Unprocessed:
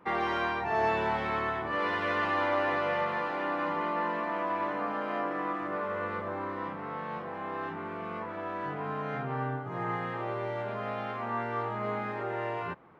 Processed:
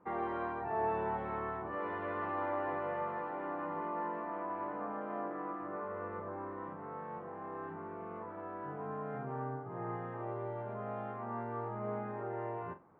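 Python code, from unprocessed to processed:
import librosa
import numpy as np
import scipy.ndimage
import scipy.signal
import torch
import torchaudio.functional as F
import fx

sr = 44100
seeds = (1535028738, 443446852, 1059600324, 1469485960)

y = scipy.signal.sosfilt(scipy.signal.butter(2, 1200.0, 'lowpass', fs=sr, output='sos'), x)
y = fx.room_flutter(y, sr, wall_m=7.4, rt60_s=0.22)
y = F.gain(torch.from_numpy(y), -6.0).numpy()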